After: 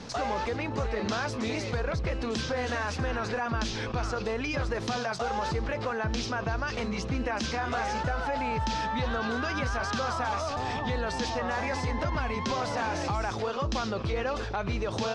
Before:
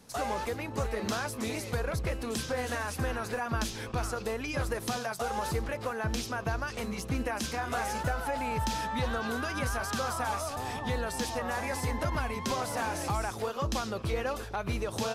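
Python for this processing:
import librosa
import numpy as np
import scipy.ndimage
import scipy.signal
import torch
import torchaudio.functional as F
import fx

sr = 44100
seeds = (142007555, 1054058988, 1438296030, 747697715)

y = scipy.signal.sosfilt(scipy.signal.butter(4, 5800.0, 'lowpass', fs=sr, output='sos'), x)
y = fx.env_flatten(y, sr, amount_pct=50)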